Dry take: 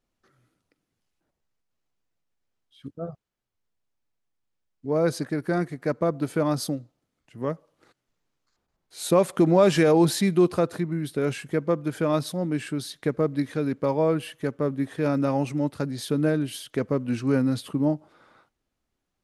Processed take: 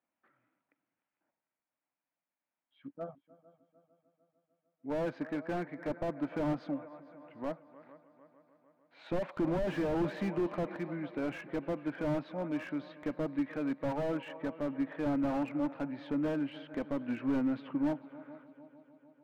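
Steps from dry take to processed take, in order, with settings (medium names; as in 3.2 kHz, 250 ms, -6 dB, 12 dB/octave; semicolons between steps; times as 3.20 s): cabinet simulation 250–2600 Hz, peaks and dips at 280 Hz +4 dB, 410 Hz -10 dB, 630 Hz +4 dB, 920 Hz +6 dB, 1.6 kHz +3 dB, 2.3 kHz +4 dB; multi-head delay 150 ms, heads second and third, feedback 56%, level -21.5 dB; slew-rate limiter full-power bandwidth 32 Hz; trim -6.5 dB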